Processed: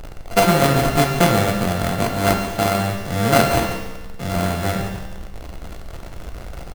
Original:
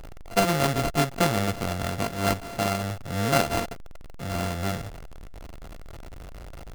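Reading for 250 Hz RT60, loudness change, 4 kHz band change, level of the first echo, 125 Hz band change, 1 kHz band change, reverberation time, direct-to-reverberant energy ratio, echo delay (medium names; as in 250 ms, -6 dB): 1.2 s, +7.5 dB, +6.5 dB, -14.0 dB, +7.5 dB, +8.0 dB, 1.2 s, 3.0 dB, 141 ms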